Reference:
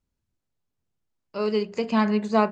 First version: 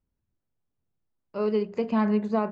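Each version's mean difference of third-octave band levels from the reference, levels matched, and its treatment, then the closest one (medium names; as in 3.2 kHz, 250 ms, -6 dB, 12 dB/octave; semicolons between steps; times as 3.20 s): 3.0 dB: low-pass 1.2 kHz 6 dB/octave; peak limiter -16 dBFS, peak gain reduction 6.5 dB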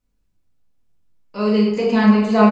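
4.0 dB: delay 738 ms -10 dB; simulated room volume 360 m³, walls mixed, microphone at 1.9 m; trim +1 dB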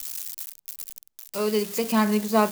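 7.5 dB: zero-crossing glitches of -25 dBFS; treble shelf 5.3 kHz +5 dB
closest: first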